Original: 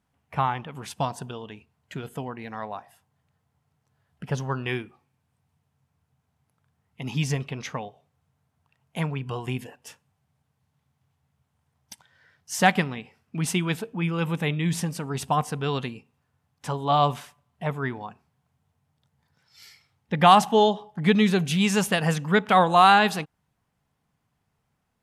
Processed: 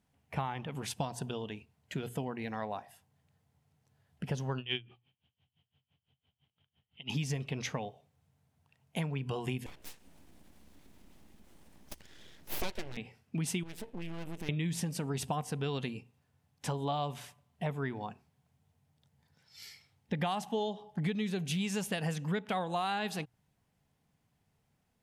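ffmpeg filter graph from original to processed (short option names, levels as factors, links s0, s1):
-filter_complex "[0:a]asettb=1/sr,asplit=3[s0][s1][s2];[s0]atrim=end=4.584[s3];[s1]atrim=start=4.58:end=7.1,asetpts=PTS-STARTPTS,afade=t=in:d=0.004:c=qsin,afade=t=out:st=2.516:d=0.004:c=qsin,lowpass=f=3100:t=q:w=14,aeval=exprs='val(0)*pow(10,-25*(0.5-0.5*cos(2*PI*5.9*n/s))/20)':c=same[s4];[s2]atrim=start=7.096[s5];[s3][s4]acrossfade=d=0.004:c1=hsin:c2=qsin[s6];[s6][s5]acrossfade=d=0.004:c1=qsin:c2=hsin,asettb=1/sr,asplit=3[s7][s8][s9];[s7]atrim=end=9.664[s10];[s8]atrim=start=9.66:end=12.97,asetpts=PTS-STARTPTS,afade=t=in:d=0.004:c=qsin,afade=t=out:st=3.306:d=0.004:c=qsin,acompressor=mode=upward:threshold=0.00794:ratio=2.5:attack=3.2:release=140:knee=2.83:detection=peak,aeval=exprs='val(0)+0.000794*(sin(2*PI*60*n/s)+sin(2*PI*2*60*n/s)/2+sin(2*PI*3*60*n/s)/3+sin(2*PI*4*60*n/s)/4+sin(2*PI*5*60*n/s)/5)':c=same,aeval=exprs='abs(val(0))':c=same[s11];[s9]atrim=start=12.966[s12];[s10][s11]acrossfade=d=0.004:c1=hsin:c2=qsin[s13];[s13][s12]acrossfade=d=0.004:c1=qsin:c2=hsin,asettb=1/sr,asplit=3[s14][s15][s16];[s14]atrim=end=13.634[s17];[s15]atrim=start=13.63:end=14.49,asetpts=PTS-STARTPTS,afade=t=in:d=0.004:c=qsin,afade=t=out:st=0.856:d=0.004:c=qsin,aeval=exprs='max(val(0),0)':c=same,acompressor=threshold=0.0178:ratio=4:attack=3.2:release=140:knee=1:detection=peak,equalizer=f=150:t=o:w=0.35:g=-5.5[s18];[s16]atrim=start=14.486[s19];[s17][s18]acrossfade=d=0.004:c1=hsin:c2=qsin[s20];[s20][s19]acrossfade=d=0.004:c1=qsin:c2=hsin,equalizer=f=1200:t=o:w=0.9:g=-6.5,bandreject=f=60:t=h:w=6,bandreject=f=120:t=h:w=6,acompressor=threshold=0.0282:ratio=8"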